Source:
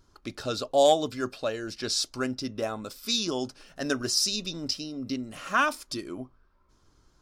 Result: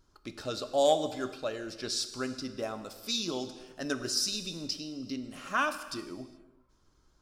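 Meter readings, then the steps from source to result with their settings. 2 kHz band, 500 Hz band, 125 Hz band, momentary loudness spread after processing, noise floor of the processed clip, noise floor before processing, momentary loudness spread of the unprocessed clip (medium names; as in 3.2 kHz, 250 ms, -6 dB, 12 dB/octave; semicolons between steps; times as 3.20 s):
-4.5 dB, -4.0 dB, -5.5 dB, 13 LU, -67 dBFS, -65 dBFS, 14 LU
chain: gated-style reverb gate 450 ms falling, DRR 9.5 dB; trim -5 dB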